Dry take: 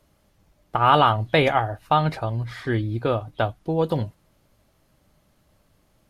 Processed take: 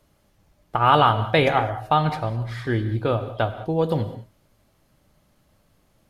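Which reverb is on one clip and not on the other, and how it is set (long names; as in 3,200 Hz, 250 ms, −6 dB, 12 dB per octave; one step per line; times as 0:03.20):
reverb whose tail is shaped and stops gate 230 ms flat, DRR 10.5 dB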